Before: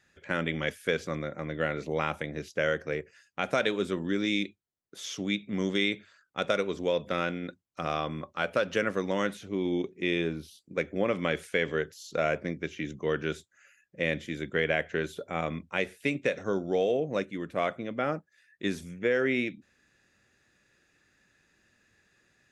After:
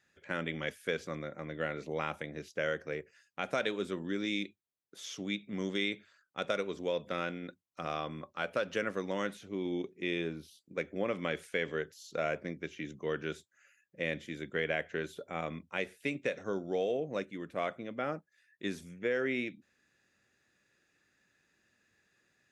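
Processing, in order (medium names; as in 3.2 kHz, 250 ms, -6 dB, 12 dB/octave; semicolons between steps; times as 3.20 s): bass shelf 61 Hz -11.5 dB; trim -5.5 dB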